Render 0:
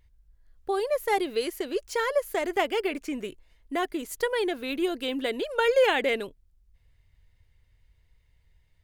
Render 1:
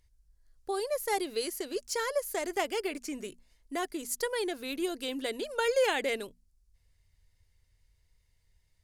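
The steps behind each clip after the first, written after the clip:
flat-topped bell 7,300 Hz +10 dB
mains-hum notches 60/120/180/240 Hz
level −5.5 dB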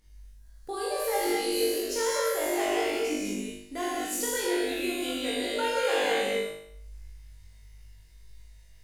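reverb whose tail is shaped and stops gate 270 ms flat, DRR −5 dB
downward compressor 1.5 to 1, threshold −49 dBFS, peak gain reduction 12.5 dB
flutter between parallel walls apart 3.4 metres, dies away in 0.69 s
level +3 dB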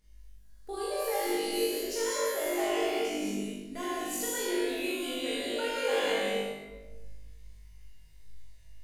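rectangular room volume 690 cubic metres, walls mixed, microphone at 1.4 metres
level −5.5 dB

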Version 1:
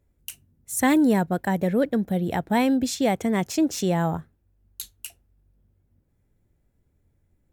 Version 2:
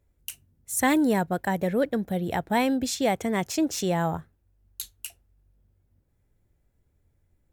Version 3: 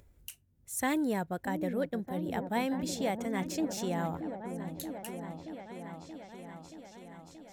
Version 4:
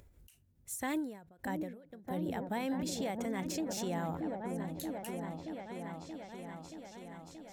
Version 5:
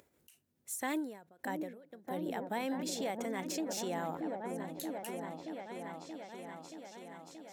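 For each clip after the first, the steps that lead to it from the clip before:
parametric band 220 Hz −4.5 dB 1.6 octaves
echo whose low-pass opens from repeat to repeat 628 ms, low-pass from 400 Hz, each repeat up 1 octave, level −6 dB; upward compression, threshold −40 dBFS; level −8.5 dB
brickwall limiter −29 dBFS, peak gain reduction 8.5 dB; every ending faded ahead of time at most 100 dB per second; level +1 dB
high-pass filter 260 Hz 12 dB per octave; level +1 dB

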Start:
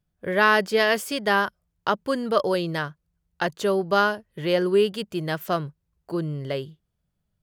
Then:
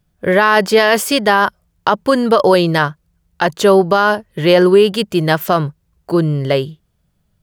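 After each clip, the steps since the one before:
dynamic equaliser 910 Hz, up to +5 dB, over −35 dBFS, Q 1.9
boost into a limiter +14 dB
level −1 dB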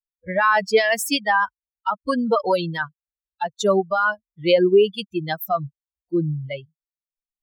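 spectral dynamics exaggerated over time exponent 3
low-shelf EQ 180 Hz −7.5 dB
level −1 dB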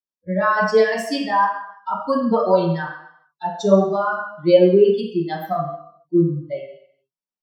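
convolution reverb RT60 0.70 s, pre-delay 3 ms, DRR −8.5 dB
level −14 dB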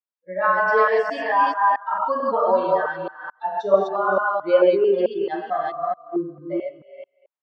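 delay that plays each chunk backwards 220 ms, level 0 dB
band-pass filter 590–2,000 Hz

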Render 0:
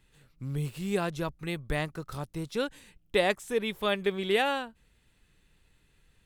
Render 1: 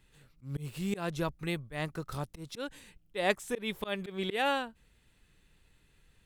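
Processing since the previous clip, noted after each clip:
volume swells 163 ms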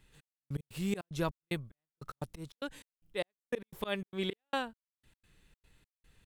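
gate pattern "xx...x.xxx.xx.." 149 BPM −60 dB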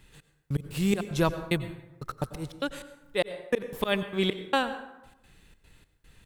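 dense smooth reverb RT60 0.98 s, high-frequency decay 0.55×, pre-delay 80 ms, DRR 11.5 dB
level +8.5 dB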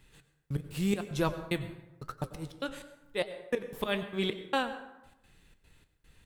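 flanger 0.92 Hz, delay 6.9 ms, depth 9.6 ms, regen −70%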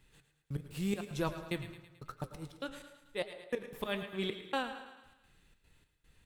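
feedback echo with a high-pass in the loop 109 ms, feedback 57%, high-pass 620 Hz, level −11.5 dB
level −5 dB

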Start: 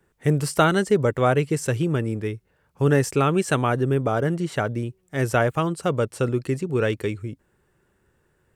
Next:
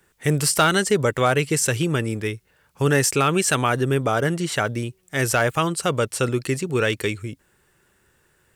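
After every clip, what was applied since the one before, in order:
tilt shelving filter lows −6 dB, about 1,400 Hz
in parallel at 0 dB: brickwall limiter −16.5 dBFS, peak gain reduction 11 dB
on the sum: hard clipping −8 dBFS, distortion −28 dB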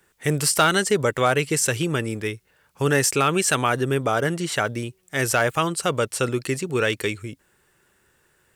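low-shelf EQ 210 Hz −4.5 dB

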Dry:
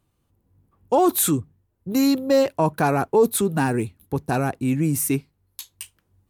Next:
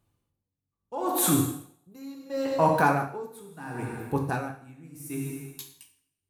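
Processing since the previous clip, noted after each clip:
dynamic equaliser 1,300 Hz, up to +6 dB, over −37 dBFS, Q 1
coupled-rooms reverb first 0.95 s, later 2.8 s, from −27 dB, DRR 0.5 dB
tremolo with a sine in dB 0.73 Hz, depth 25 dB
level −4 dB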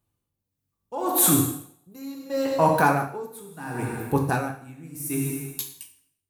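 high-shelf EQ 9,000 Hz +8 dB
automatic gain control gain up to 11.5 dB
level −5.5 dB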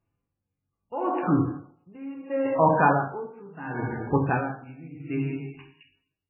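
MP3 8 kbit/s 11,025 Hz

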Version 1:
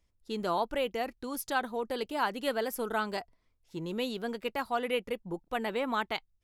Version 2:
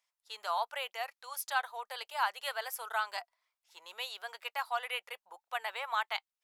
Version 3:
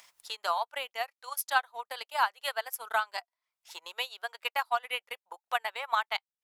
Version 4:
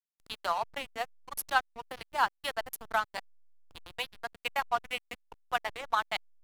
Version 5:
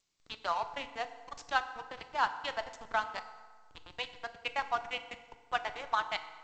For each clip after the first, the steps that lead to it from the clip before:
inverse Chebyshev high-pass filter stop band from 290 Hz, stop band 50 dB
transient designer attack +8 dB, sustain −11 dB; upward compression, threshold −39 dBFS
slack as between gear wheels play −30.5 dBFS
feedback delay network reverb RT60 1.5 s, low-frequency decay 0.95×, high-frequency decay 0.65×, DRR 9.5 dB; level −2.5 dB; G.722 64 kbit/s 16,000 Hz

